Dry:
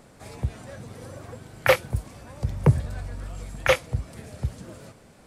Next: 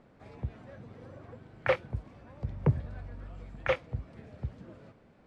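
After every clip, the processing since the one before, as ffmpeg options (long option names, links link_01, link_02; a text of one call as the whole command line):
ffmpeg -i in.wav -af "lowpass=2800,equalizer=frequency=270:width_type=o:width=1.6:gain=3,volume=-9dB" out.wav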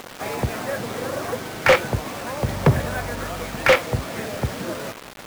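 ffmpeg -i in.wav -filter_complex "[0:a]asplit=2[link_01][link_02];[link_02]highpass=frequency=720:poles=1,volume=26dB,asoftclip=type=tanh:threshold=-13dB[link_03];[link_01][link_03]amix=inputs=2:normalize=0,lowpass=frequency=3700:poles=1,volume=-6dB,acrusher=bits=6:mix=0:aa=0.000001,volume=7.5dB" out.wav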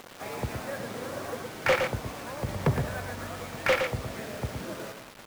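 ffmpeg -i in.wav -af "aecho=1:1:115:0.501,volume=-9dB" out.wav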